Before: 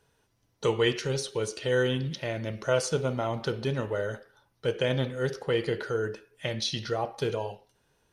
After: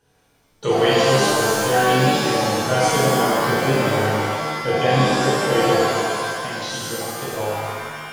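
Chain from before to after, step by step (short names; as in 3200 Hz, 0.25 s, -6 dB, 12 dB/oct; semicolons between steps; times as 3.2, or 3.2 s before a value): 5.9–7.37 compressor 4:1, threshold -36 dBFS, peak gain reduction 10 dB; shimmer reverb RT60 1.7 s, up +7 st, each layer -2 dB, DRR -7.5 dB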